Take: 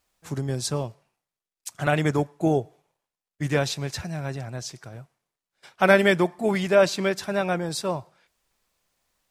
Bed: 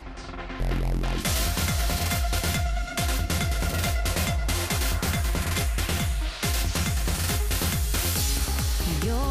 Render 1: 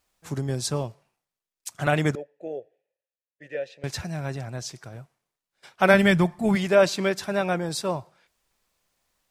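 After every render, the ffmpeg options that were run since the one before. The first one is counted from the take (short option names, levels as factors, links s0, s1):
-filter_complex "[0:a]asettb=1/sr,asplit=3[s0][s1][s2];[s0]atrim=end=2.154[s3];[s1]atrim=start=2.15:end=3.84,asetpts=PTS-STARTPTS,afade=t=in:d=0.004:c=qsin,afade=t=out:st=1.686:d=0.004:c=qsin,asplit=3[s4][s5][s6];[s4]bandpass=f=530:t=q:w=8,volume=1[s7];[s5]bandpass=f=1840:t=q:w=8,volume=0.501[s8];[s6]bandpass=f=2480:t=q:w=8,volume=0.355[s9];[s7][s8][s9]amix=inputs=3:normalize=0[s10];[s2]atrim=start=3.836[s11];[s3][s10]acrossfade=d=0.004:c1=hsin:c2=qsin[s12];[s12][s11]acrossfade=d=0.004:c1=qsin:c2=hsin,asplit=3[s13][s14][s15];[s13]afade=t=out:st=5.93:d=0.02[s16];[s14]asubboost=boost=9.5:cutoff=140,afade=t=in:st=5.93:d=0.02,afade=t=out:st=6.55:d=0.02[s17];[s15]afade=t=in:st=6.55:d=0.02[s18];[s16][s17][s18]amix=inputs=3:normalize=0"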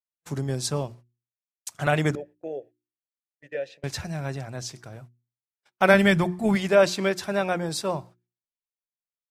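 -af "agate=range=0.0141:threshold=0.00562:ratio=16:detection=peak,bandreject=f=60:t=h:w=6,bandreject=f=120:t=h:w=6,bandreject=f=180:t=h:w=6,bandreject=f=240:t=h:w=6,bandreject=f=300:t=h:w=6,bandreject=f=360:t=h:w=6"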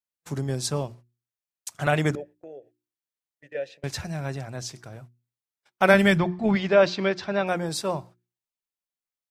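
-filter_complex "[0:a]asplit=3[s0][s1][s2];[s0]afade=t=out:st=2.34:d=0.02[s3];[s1]acompressor=threshold=0.00562:ratio=2:attack=3.2:release=140:knee=1:detection=peak,afade=t=in:st=2.34:d=0.02,afade=t=out:st=3.54:d=0.02[s4];[s2]afade=t=in:st=3.54:d=0.02[s5];[s3][s4][s5]amix=inputs=3:normalize=0,asettb=1/sr,asplit=3[s6][s7][s8];[s6]atrim=end=6.184[s9];[s7]atrim=start=6.18:end=7.47,asetpts=PTS-STARTPTS,afade=t=in:d=0.004:c=qsin,afade=t=out:st=1.286:d=0.004:c=qsin,lowpass=f=5000:w=0.5412,lowpass=f=5000:w=1.3066[s10];[s8]atrim=start=7.466[s11];[s9][s10]acrossfade=d=0.004:c1=hsin:c2=qsin[s12];[s12][s11]acrossfade=d=0.004:c1=qsin:c2=hsin"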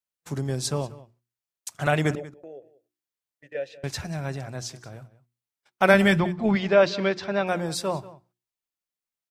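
-filter_complex "[0:a]asplit=2[s0][s1];[s1]adelay=186.6,volume=0.126,highshelf=f=4000:g=-4.2[s2];[s0][s2]amix=inputs=2:normalize=0"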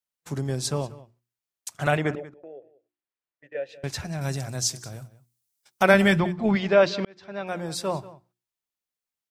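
-filter_complex "[0:a]asettb=1/sr,asplit=3[s0][s1][s2];[s0]atrim=end=1.974[s3];[s1]atrim=start=1.97:end=3.69,asetpts=PTS-STARTPTS,afade=t=in:d=0.004:c=qsin,afade=t=out:st=1.716:d=0.004:c=qsin,bass=f=250:g=-5,treble=f=4000:g=-14[s4];[s2]atrim=start=3.686[s5];[s3][s4]acrossfade=d=0.004:c1=hsin:c2=qsin[s6];[s6][s5]acrossfade=d=0.004:c1=qsin:c2=hsin,asettb=1/sr,asplit=3[s7][s8][s9];[s7]atrim=end=4.214[s10];[s8]atrim=start=4.21:end=5.83,asetpts=PTS-STARTPTS,afade=t=in:d=0.004:c=qsin,afade=t=out:st=1.616:d=0.004:c=qsin,bass=f=250:g=4,treble=f=4000:g=14[s11];[s9]atrim=start=5.826[s12];[s10][s11]acrossfade=d=0.004:c1=hsin:c2=qsin[s13];[s13][s12]acrossfade=d=0.004:c1=qsin:c2=hsin,asplit=2[s14][s15];[s14]atrim=end=7.05,asetpts=PTS-STARTPTS,afade=t=out:st=7.046:d=0.004:c=hsin[s16];[s15]atrim=start=7.05,asetpts=PTS-STARTPTS,afade=t=in:d=0.87[s17];[s16][s17]concat=n=2:v=0:a=1"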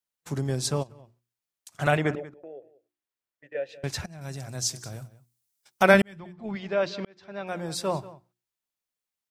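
-filter_complex "[0:a]asplit=3[s0][s1][s2];[s0]afade=t=out:st=0.82:d=0.02[s3];[s1]acompressor=threshold=0.00708:ratio=10:attack=3.2:release=140:knee=1:detection=peak,afade=t=in:st=0.82:d=0.02,afade=t=out:st=1.72:d=0.02[s4];[s2]afade=t=in:st=1.72:d=0.02[s5];[s3][s4][s5]amix=inputs=3:normalize=0,asplit=3[s6][s7][s8];[s6]atrim=end=4.06,asetpts=PTS-STARTPTS,afade=t=out:st=4.056:d=0.004:c=hsin:silence=0.149624[s9];[s7]atrim=start=4.06:end=6.02,asetpts=PTS-STARTPTS,afade=t=in:d=0.85:silence=0.149624,afade=t=out:st=1.956:d=0.004:c=hsin[s10];[s8]atrim=start=6.02,asetpts=PTS-STARTPTS,afade=t=in:d=1.9[s11];[s9][s10][s11]concat=n=3:v=0:a=1"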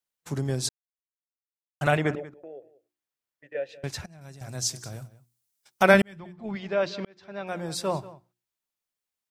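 -filter_complex "[0:a]asplit=4[s0][s1][s2][s3];[s0]atrim=end=0.69,asetpts=PTS-STARTPTS,afade=t=out:st=0.686:d=0.004:c=hsin[s4];[s1]atrim=start=0.69:end=1.81,asetpts=PTS-STARTPTS,volume=0[s5];[s2]atrim=start=1.81:end=4.41,asetpts=PTS-STARTPTS,afade=t=in:d=0.004:c=hsin,afade=t=out:st=1.86:d=0.74:silence=0.266073[s6];[s3]atrim=start=4.41,asetpts=PTS-STARTPTS,afade=t=in:d=0.004:c=hsin:silence=0.266073[s7];[s4][s5][s6][s7]concat=n=4:v=0:a=1"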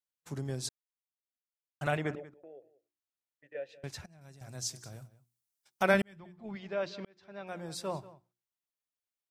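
-af "volume=0.376"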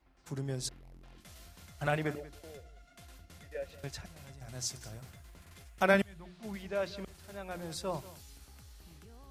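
-filter_complex "[1:a]volume=0.0376[s0];[0:a][s0]amix=inputs=2:normalize=0"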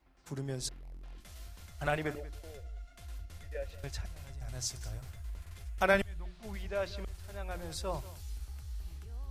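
-af "asubboost=boost=11:cutoff=58"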